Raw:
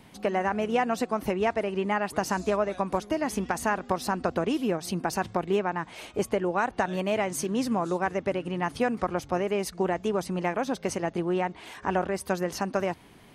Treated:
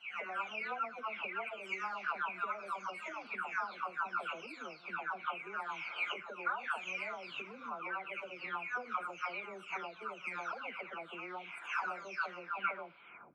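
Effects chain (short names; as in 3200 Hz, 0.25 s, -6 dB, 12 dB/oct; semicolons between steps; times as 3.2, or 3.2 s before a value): spectral delay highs early, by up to 0.629 s; recorder AGC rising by 42 dB/s; double band-pass 1800 Hz, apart 0.74 oct; air absorption 52 m; Schroeder reverb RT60 0.41 s, combs from 30 ms, DRR 19 dB; gain +1 dB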